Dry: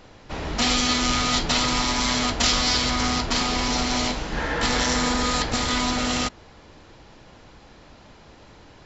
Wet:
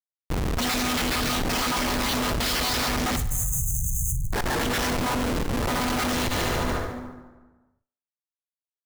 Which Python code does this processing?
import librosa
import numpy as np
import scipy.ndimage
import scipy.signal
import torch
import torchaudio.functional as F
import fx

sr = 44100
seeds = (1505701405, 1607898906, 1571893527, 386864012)

y = fx.spec_dropout(x, sr, seeds[0], share_pct=28)
y = fx.high_shelf(y, sr, hz=2400.0, db=-10.0, at=(4.9, 5.81))
y = fx.schmitt(y, sr, flips_db=-29.0)
y = fx.brickwall_bandstop(y, sr, low_hz=160.0, high_hz=6100.0, at=(3.16, 4.33))
y = fx.echo_thinned(y, sr, ms=72, feedback_pct=52, hz=240.0, wet_db=-16.5)
y = fx.rev_plate(y, sr, seeds[1], rt60_s=1.3, hf_ratio=0.6, predelay_ms=0, drr_db=17.0)
y = fx.env_flatten(y, sr, amount_pct=100)